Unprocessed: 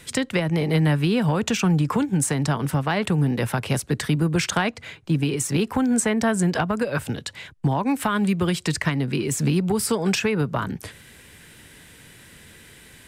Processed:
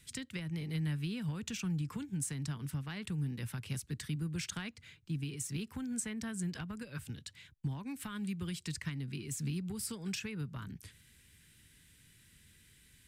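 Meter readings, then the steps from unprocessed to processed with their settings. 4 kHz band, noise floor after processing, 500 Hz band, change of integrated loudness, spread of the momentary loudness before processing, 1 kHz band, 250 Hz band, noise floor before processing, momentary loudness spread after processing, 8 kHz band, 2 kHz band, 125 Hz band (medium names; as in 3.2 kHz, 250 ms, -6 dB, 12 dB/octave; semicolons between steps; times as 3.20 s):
-15.0 dB, -64 dBFS, -25.5 dB, -16.5 dB, 6 LU, -25.5 dB, -17.0 dB, -48 dBFS, 7 LU, -13.5 dB, -18.5 dB, -14.5 dB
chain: amplifier tone stack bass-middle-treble 6-0-2; trim +1 dB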